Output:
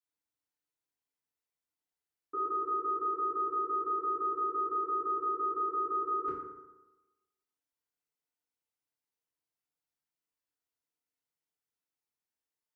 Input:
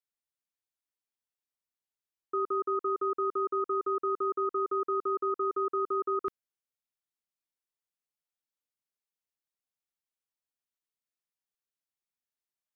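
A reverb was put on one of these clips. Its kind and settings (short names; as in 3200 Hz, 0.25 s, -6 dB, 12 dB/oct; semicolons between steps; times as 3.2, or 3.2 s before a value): FDN reverb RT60 1.1 s, low-frequency decay 0.95×, high-frequency decay 0.45×, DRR -9 dB; gain -9 dB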